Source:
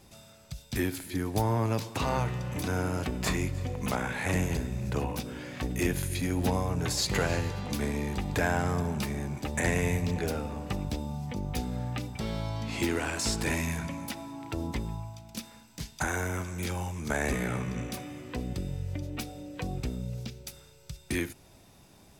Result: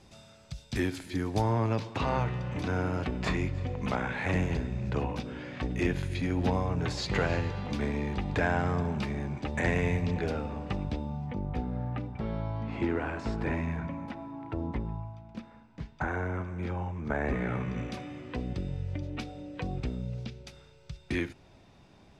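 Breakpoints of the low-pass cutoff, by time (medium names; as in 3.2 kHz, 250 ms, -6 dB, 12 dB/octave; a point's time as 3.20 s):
1.30 s 6.2 kHz
1.81 s 3.6 kHz
10.74 s 3.6 kHz
11.60 s 1.6 kHz
17.22 s 1.6 kHz
17.86 s 3.8 kHz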